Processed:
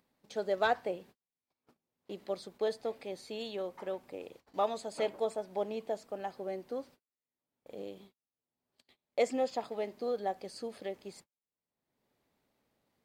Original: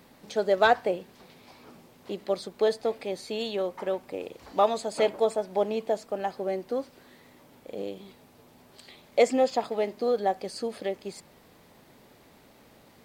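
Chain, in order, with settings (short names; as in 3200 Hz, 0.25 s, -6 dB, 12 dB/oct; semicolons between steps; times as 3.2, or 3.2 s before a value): gate -45 dBFS, range -45 dB; upward compressor, threshold -45 dBFS; gain -8.5 dB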